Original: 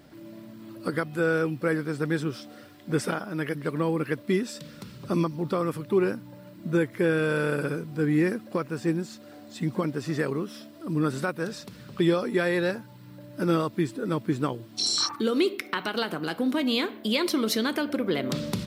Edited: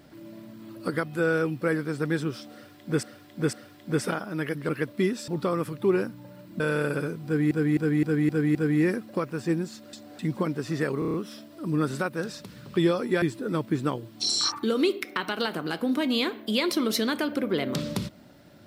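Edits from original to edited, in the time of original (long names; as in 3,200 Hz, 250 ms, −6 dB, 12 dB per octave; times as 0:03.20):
0:02.53–0:03.03: repeat, 3 plays
0:03.69–0:03.99: remove
0:04.58–0:05.36: remove
0:06.68–0:07.28: remove
0:07.93–0:08.19: repeat, 6 plays
0:09.31–0:09.57: reverse
0:10.37: stutter 0.03 s, 6 plays
0:12.45–0:13.79: remove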